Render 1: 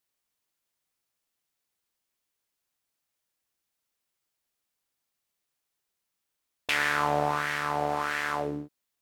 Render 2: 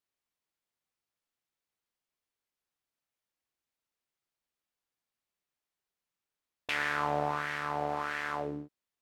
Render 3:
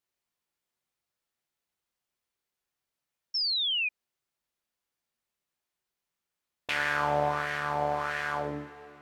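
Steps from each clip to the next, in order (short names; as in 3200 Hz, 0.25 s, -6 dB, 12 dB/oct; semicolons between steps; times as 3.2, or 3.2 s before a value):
high shelf 5600 Hz -9 dB; gain -4.5 dB
two-slope reverb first 0.36 s, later 3.8 s, from -17 dB, DRR 4.5 dB; painted sound fall, 3.34–3.89, 2400–5500 Hz -30 dBFS; gain +1.5 dB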